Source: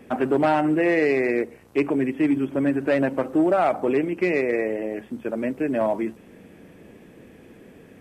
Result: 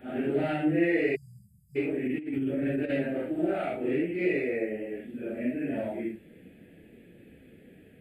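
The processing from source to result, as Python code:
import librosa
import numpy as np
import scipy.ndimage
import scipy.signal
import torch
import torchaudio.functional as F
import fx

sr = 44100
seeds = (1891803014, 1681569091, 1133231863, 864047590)

y = fx.phase_scramble(x, sr, seeds[0], window_ms=200)
y = fx.spec_erase(y, sr, start_s=1.15, length_s=0.61, low_hz=210.0, high_hz=4700.0)
y = fx.over_compress(y, sr, threshold_db=-23.0, ratio=-0.5, at=(2.05, 2.9))
y = fx.fixed_phaser(y, sr, hz=2500.0, stages=4)
y = y * 10.0 ** (-4.5 / 20.0)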